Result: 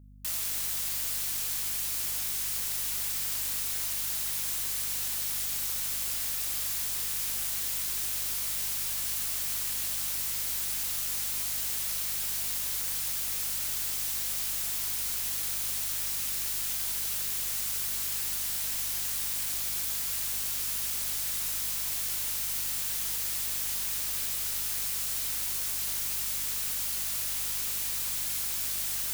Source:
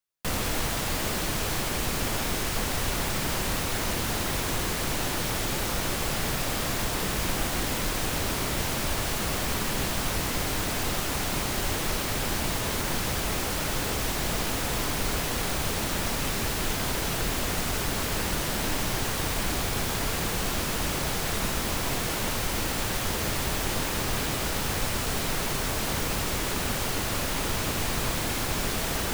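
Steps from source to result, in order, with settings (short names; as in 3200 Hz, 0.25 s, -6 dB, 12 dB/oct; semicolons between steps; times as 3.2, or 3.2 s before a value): pre-emphasis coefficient 0.97; hum 50 Hz, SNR 20 dB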